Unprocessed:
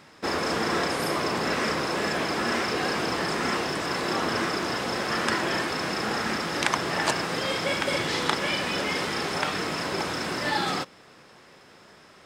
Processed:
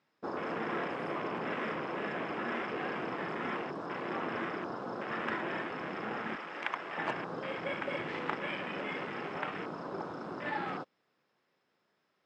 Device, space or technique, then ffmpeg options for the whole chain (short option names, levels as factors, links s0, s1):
over-cleaned archive recording: -filter_complex "[0:a]highpass=130,lowpass=5100,afwtdn=0.0355,asettb=1/sr,asplit=3[s0][s1][s2];[s0]atrim=end=6.354[s3];[s1]atrim=start=6.35:end=6.98,asetpts=PTS-STARTPTS,afade=t=in:d=0.004:c=qsin,afade=t=out:st=0.626:d=0.004:c=qsin,highpass=f=710:p=1[s4];[s2]atrim=start=6.976[s5];[s3][s4]acrossfade=d=0.004:c1=hsin:c2=qsin[s6];[s6][s5]acrossfade=d=0.004:c1=qsin:c2=hsin,volume=0.376"